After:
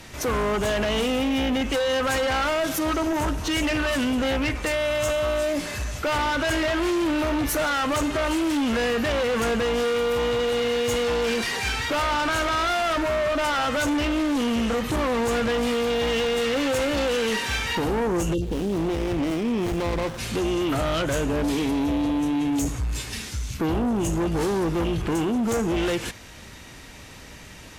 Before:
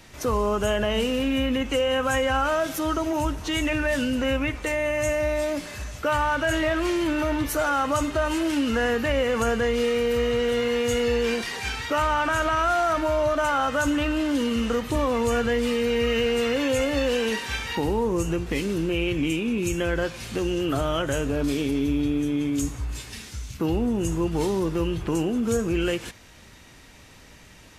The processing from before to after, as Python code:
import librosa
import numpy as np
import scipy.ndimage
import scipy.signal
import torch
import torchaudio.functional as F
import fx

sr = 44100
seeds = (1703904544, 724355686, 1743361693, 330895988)

p1 = fx.cheby_harmonics(x, sr, harmonics=(5,), levels_db=(-7,), full_scale_db=-13.0)
p2 = np.clip(p1, -10.0 ** (-22.5 / 20.0), 10.0 ** (-22.5 / 20.0))
p3 = p1 + F.gain(torch.from_numpy(p2), -8.0).numpy()
p4 = fx.spec_box(p3, sr, start_s=18.34, length_s=0.38, low_hz=600.0, high_hz=2700.0, gain_db=-27)
p5 = fx.running_max(p4, sr, window=17, at=(18.41, 20.17), fade=0.02)
y = F.gain(torch.from_numpy(p5), -7.0).numpy()